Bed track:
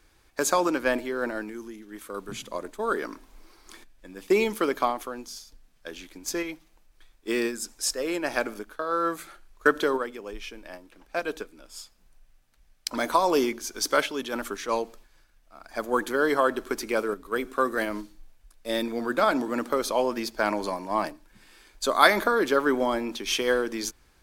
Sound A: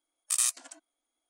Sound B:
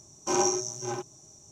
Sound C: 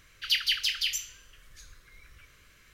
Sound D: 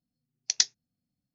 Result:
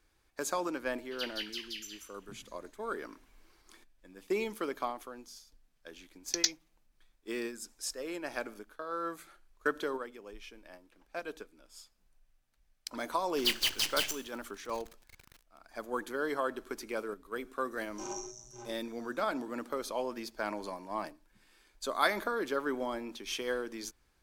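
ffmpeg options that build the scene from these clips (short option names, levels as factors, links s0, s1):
-filter_complex "[3:a]asplit=2[s0][s1];[0:a]volume=0.299[s2];[s0]aecho=1:1:185:0.447[s3];[4:a]acontrast=65[s4];[s1]acrusher=bits=5:dc=4:mix=0:aa=0.000001[s5];[s3]atrim=end=2.73,asetpts=PTS-STARTPTS,volume=0.2,afade=t=in:d=0.004:c=hsin,afade=t=out:st=2.726:d=0.004:c=hsin,adelay=890[s6];[s4]atrim=end=1.34,asetpts=PTS-STARTPTS,volume=0.316,afade=t=in:d=0.004:c=hsin,afade=t=out:st=1.336:d=0.004:c=hsin,adelay=5840[s7];[s5]atrim=end=2.73,asetpts=PTS-STARTPTS,volume=0.631,afade=t=in:d=0.004:c=hsin,afade=t=out:st=2.726:d=0.004:c=hsin,adelay=13150[s8];[2:a]atrim=end=1.51,asetpts=PTS-STARTPTS,volume=0.168,afade=t=in:d=0.004:c=hsin,afade=t=out:st=1.506:d=0.004:c=hsin,adelay=17710[s9];[s2][s6][s7][s8][s9]amix=inputs=5:normalize=0"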